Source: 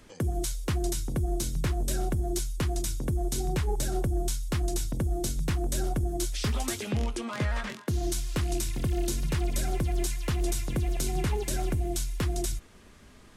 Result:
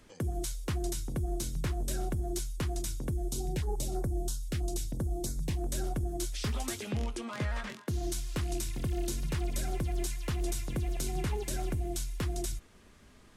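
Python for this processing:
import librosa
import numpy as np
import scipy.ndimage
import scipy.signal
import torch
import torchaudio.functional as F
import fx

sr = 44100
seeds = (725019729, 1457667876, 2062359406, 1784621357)

y = fx.filter_held_notch(x, sr, hz=6.1, low_hz=990.0, high_hz=2900.0, at=(3.13, 5.59))
y = y * 10.0 ** (-4.5 / 20.0)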